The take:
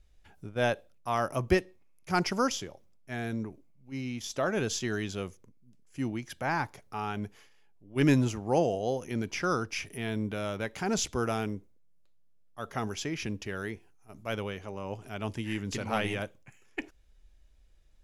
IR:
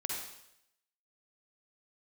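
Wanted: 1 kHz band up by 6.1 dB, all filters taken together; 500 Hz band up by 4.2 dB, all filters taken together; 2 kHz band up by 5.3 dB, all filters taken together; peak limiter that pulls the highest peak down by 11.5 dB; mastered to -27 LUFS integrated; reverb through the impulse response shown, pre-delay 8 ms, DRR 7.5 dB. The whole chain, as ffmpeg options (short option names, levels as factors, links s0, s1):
-filter_complex "[0:a]equalizer=f=500:t=o:g=3.5,equalizer=f=1000:t=o:g=6,equalizer=f=2000:t=o:g=4.5,alimiter=limit=0.1:level=0:latency=1,asplit=2[s0][s1];[1:a]atrim=start_sample=2205,adelay=8[s2];[s1][s2]afir=irnorm=-1:irlink=0,volume=0.316[s3];[s0][s3]amix=inputs=2:normalize=0,volume=1.88"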